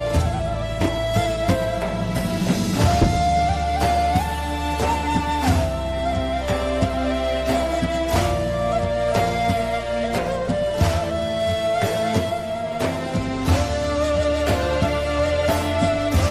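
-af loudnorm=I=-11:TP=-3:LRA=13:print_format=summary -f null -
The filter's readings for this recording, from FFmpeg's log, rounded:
Input Integrated:    -21.4 LUFS
Input True Peak:      -9.0 dBTP
Input LRA:             1.4 LU
Input Threshold:     -31.4 LUFS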